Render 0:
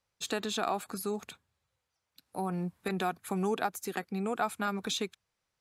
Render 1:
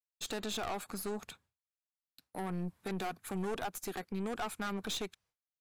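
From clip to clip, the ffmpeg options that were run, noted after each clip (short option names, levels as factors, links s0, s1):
-af "agate=range=0.0224:threshold=0.001:ratio=3:detection=peak,aeval=exprs='(tanh(50.1*val(0)+0.55)-tanh(0.55))/50.1':c=same,volume=1.12"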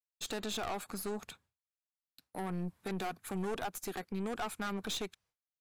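-af anull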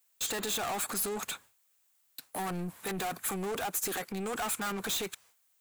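-filter_complex "[0:a]asplit=2[s0][s1];[s1]highpass=f=720:p=1,volume=20,asoftclip=type=tanh:threshold=0.0355[s2];[s0][s2]amix=inputs=2:normalize=0,lowpass=f=8000:p=1,volume=0.501,aexciter=amount=2.9:drive=3.6:freq=6900"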